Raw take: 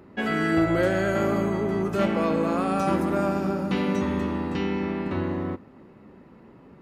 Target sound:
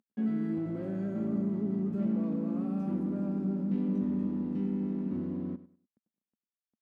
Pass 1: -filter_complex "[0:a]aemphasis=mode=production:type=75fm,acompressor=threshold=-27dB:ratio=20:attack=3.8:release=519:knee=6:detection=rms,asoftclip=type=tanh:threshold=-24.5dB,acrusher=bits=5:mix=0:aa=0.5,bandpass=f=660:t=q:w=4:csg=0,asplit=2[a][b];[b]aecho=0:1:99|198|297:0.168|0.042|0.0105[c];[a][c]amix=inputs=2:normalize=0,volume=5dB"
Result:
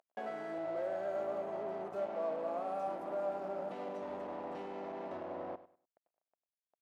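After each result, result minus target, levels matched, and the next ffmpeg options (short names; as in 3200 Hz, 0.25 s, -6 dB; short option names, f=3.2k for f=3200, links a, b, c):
compressor: peak gain reduction +12.5 dB; 250 Hz band -12.0 dB
-filter_complex "[0:a]aemphasis=mode=production:type=75fm,asoftclip=type=tanh:threshold=-24.5dB,acrusher=bits=5:mix=0:aa=0.5,bandpass=f=660:t=q:w=4:csg=0,asplit=2[a][b];[b]aecho=0:1:99|198|297:0.168|0.042|0.0105[c];[a][c]amix=inputs=2:normalize=0,volume=5dB"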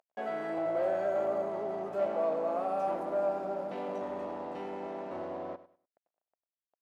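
250 Hz band -12.5 dB
-filter_complex "[0:a]aemphasis=mode=production:type=75fm,asoftclip=type=tanh:threshold=-24.5dB,acrusher=bits=5:mix=0:aa=0.5,bandpass=f=220:t=q:w=4:csg=0,asplit=2[a][b];[b]aecho=0:1:99|198|297:0.168|0.042|0.0105[c];[a][c]amix=inputs=2:normalize=0,volume=5dB"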